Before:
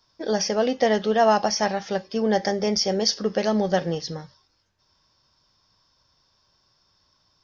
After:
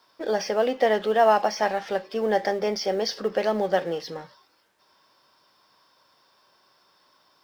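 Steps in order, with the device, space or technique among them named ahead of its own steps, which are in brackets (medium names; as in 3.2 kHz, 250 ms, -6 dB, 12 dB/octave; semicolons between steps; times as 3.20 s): phone line with mismatched companding (band-pass 330–3200 Hz; companding laws mixed up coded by mu)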